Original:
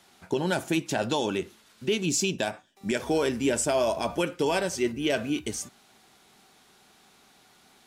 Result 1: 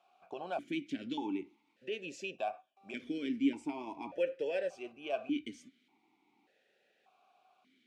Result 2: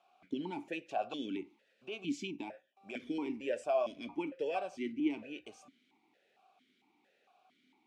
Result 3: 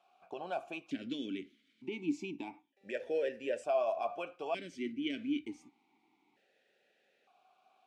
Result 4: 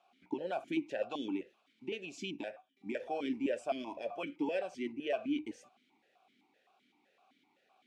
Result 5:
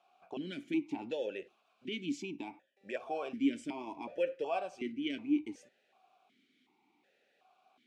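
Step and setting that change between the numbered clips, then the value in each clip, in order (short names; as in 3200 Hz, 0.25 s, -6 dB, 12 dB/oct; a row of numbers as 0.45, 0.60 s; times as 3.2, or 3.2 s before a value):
vowel sequencer, rate: 1.7, 4.4, 1.1, 7.8, 2.7 Hz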